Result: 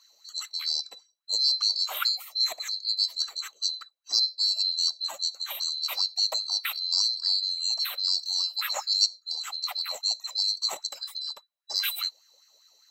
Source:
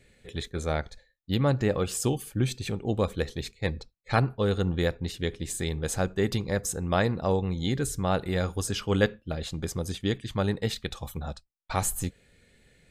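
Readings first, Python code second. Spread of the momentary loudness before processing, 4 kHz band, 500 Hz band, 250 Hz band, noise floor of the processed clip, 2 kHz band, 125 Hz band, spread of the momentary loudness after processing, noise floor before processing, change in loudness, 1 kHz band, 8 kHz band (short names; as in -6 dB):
9 LU, +15.0 dB, -21.0 dB, under -40 dB, -68 dBFS, -5.0 dB, under -40 dB, 10 LU, -67 dBFS, +3.0 dB, -7.5 dB, +0.5 dB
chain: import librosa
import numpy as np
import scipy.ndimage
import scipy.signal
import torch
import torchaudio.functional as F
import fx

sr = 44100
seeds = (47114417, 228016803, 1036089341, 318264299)

y = fx.band_swap(x, sr, width_hz=4000)
y = fx.filter_lfo_highpass(y, sr, shape='sine', hz=5.0, low_hz=530.0, high_hz=1700.0, q=6.1)
y = y * librosa.db_to_amplitude(-1.5)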